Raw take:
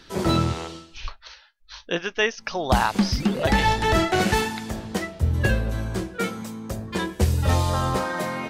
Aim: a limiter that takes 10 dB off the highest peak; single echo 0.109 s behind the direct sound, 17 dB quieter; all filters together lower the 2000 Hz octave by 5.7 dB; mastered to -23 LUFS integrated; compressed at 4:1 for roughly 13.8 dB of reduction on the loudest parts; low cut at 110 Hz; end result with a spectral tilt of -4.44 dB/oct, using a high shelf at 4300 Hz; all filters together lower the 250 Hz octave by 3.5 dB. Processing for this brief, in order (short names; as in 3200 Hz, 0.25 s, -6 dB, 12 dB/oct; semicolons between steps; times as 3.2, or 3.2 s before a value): HPF 110 Hz; bell 250 Hz -4.5 dB; bell 2000 Hz -8 dB; high shelf 4300 Hz +3.5 dB; compressor 4:1, threshold -36 dBFS; limiter -31 dBFS; echo 0.109 s -17 dB; gain +18 dB